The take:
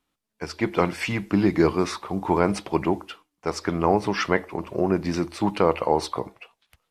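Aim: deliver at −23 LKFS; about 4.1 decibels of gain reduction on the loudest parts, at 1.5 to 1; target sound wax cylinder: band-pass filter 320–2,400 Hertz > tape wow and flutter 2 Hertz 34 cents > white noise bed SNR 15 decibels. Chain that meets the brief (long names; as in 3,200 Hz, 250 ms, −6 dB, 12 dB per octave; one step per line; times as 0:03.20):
downward compressor 1.5 to 1, threshold −25 dBFS
band-pass filter 320–2,400 Hz
tape wow and flutter 2 Hz 34 cents
white noise bed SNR 15 dB
level +7 dB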